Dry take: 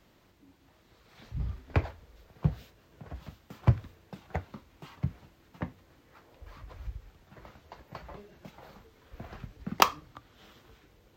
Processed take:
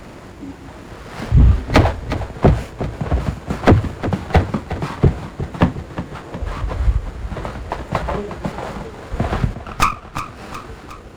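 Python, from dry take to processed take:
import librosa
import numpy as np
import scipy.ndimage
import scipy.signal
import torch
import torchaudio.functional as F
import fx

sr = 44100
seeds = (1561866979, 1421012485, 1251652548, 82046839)

p1 = fx.freq_compress(x, sr, knee_hz=1800.0, ratio=1.5)
p2 = fx.rider(p1, sr, range_db=10, speed_s=0.5)
p3 = p1 + F.gain(torch.from_numpy(p2), -2.0).numpy()
p4 = fx.double_bandpass(p3, sr, hz=2700.0, octaves=2.1, at=(9.54, 10.14))
p5 = fx.fold_sine(p4, sr, drive_db=15, ceiling_db=-5.0)
p6 = fx.echo_feedback(p5, sr, ms=361, feedback_pct=56, wet_db=-12)
p7 = fx.running_max(p6, sr, window=9)
y = F.gain(torch.from_numpy(p7), 1.0).numpy()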